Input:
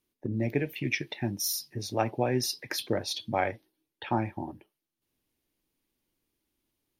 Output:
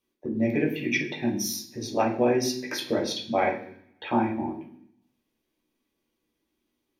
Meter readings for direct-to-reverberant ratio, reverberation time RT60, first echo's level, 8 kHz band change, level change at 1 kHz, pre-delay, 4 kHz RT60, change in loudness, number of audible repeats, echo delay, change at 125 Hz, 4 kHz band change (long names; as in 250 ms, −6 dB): −3.5 dB, 0.65 s, no echo audible, +1.0 dB, +4.0 dB, 9 ms, 0.75 s, +4.0 dB, no echo audible, no echo audible, −2.5 dB, +1.0 dB